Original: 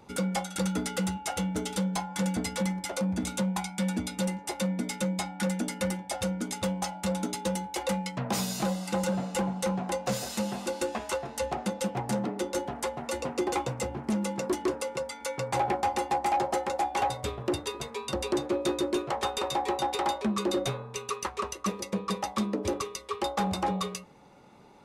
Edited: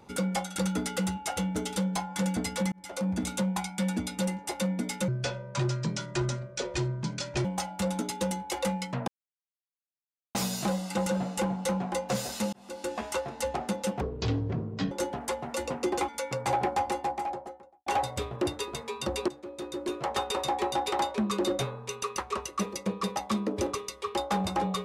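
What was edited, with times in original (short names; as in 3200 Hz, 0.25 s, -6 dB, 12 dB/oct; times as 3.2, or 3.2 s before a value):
2.72–3.08 fade in
5.08–6.69 speed 68%
8.32 insert silence 1.27 s
10.5–11.01 fade in
11.98–12.46 speed 53%
13.63–15.15 cut
15.74–16.93 studio fade out
18.35–19.17 fade in quadratic, from -15 dB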